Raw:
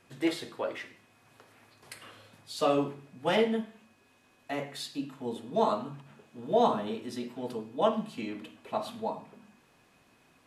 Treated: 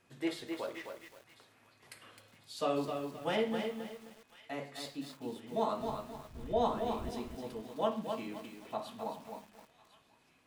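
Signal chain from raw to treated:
0:05.78–0:07.09: wind on the microphone 93 Hz −41 dBFS
delay with a high-pass on its return 1,049 ms, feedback 62%, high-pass 1,600 Hz, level −18 dB
feedback echo at a low word length 261 ms, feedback 35%, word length 8 bits, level −5.5 dB
level −6.5 dB

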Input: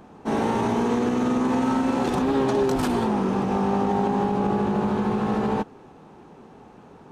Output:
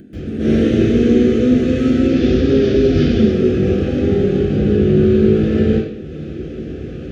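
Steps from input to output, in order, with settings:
0:01.94–0:03.16: variable-slope delta modulation 32 kbit/s
low-shelf EQ 160 Hz −11.5 dB
upward compression, threshold −29 dBFS
Butterworth band-reject 930 Hz, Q 0.61
convolution reverb RT60 0.70 s, pre-delay 131 ms, DRR −19 dB
level −8 dB

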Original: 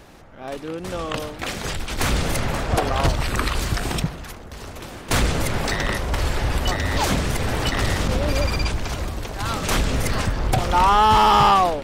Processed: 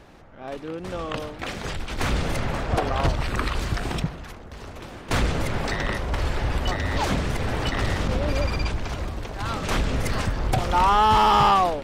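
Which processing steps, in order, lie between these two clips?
high-shelf EQ 6,400 Hz −11.5 dB, from 0:10.05 −4.5 dB
level −2.5 dB

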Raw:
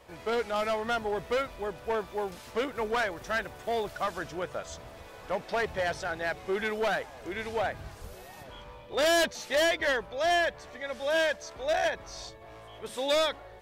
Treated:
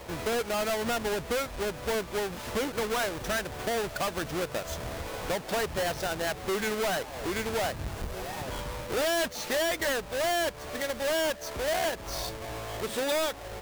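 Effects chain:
each half-wave held at its own peak
downward compressor 3 to 1, threshold −39 dBFS, peak gain reduction 12.5 dB
level +7 dB

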